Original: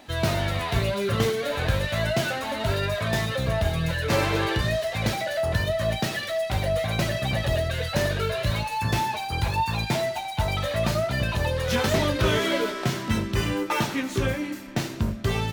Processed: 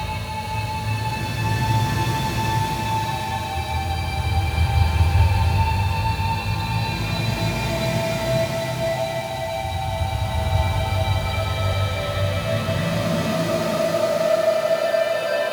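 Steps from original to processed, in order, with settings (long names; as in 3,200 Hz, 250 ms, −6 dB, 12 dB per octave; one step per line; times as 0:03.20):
extreme stretch with random phases 5.9×, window 0.50 s, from 0:08.62
high-pass filter sweep 76 Hz → 540 Hz, 0:12.28–0:13.99
on a send: feedback delay with all-pass diffusion 473 ms, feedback 49%, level −3.5 dB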